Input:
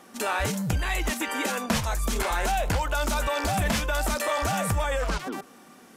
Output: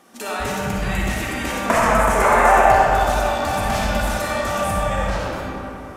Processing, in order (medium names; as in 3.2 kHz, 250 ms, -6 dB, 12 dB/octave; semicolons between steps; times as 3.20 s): 1.66–2.63 s: graphic EQ 500/1000/2000/4000/8000 Hz +9/+11/+10/-10/+6 dB; algorithmic reverb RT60 3.2 s, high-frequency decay 0.5×, pre-delay 15 ms, DRR -5 dB; trim -2 dB